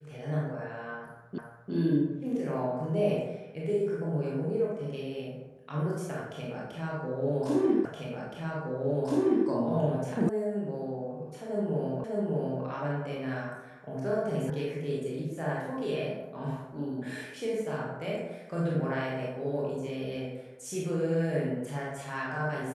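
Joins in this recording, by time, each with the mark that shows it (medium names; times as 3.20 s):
1.38 s: repeat of the last 0.35 s
7.85 s: repeat of the last 1.62 s
10.29 s: sound stops dead
12.04 s: repeat of the last 0.6 s
14.50 s: sound stops dead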